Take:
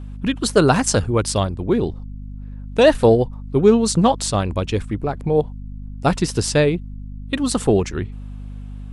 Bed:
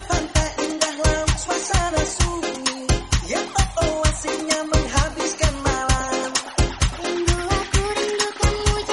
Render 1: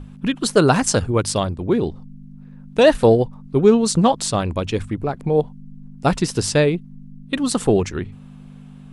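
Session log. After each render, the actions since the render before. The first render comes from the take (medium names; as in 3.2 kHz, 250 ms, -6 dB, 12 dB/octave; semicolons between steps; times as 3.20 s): hum notches 50/100 Hz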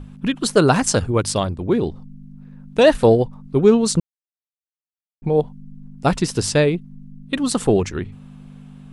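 4.00–5.22 s: mute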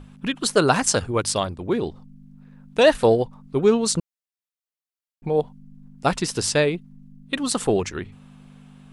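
bass shelf 390 Hz -8 dB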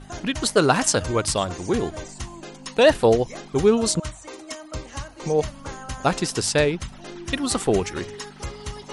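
add bed -14.5 dB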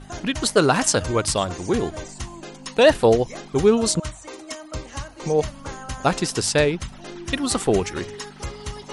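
trim +1 dB; peak limiter -3 dBFS, peak gain reduction 2 dB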